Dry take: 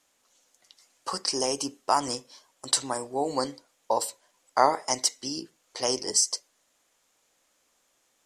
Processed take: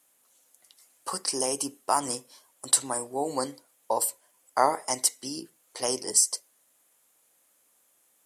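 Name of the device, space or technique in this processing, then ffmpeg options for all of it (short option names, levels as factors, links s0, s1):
budget condenser microphone: -filter_complex "[0:a]asettb=1/sr,asplit=3[s0][s1][s2];[s0]atrim=end=3.984[s3];[s1]atrim=start=3.98:end=4.79,asetpts=PTS-STARTPTS,afade=t=in:d=0.004:c=qsin,afade=t=out:st=0.806:d=0.004:c=qsin,bandreject=f=3900:w=13[s4];[s2]atrim=start=4.786[s5];[s3][s4]acrossfade=d=0.004:c1=hsin:c2=qsin[s6];[s6][s5]acrossfade=d=0.004:c1=qsin:c2=hsin,highpass=79,highshelf=f=8000:t=q:w=1.5:g=11,volume=0.841"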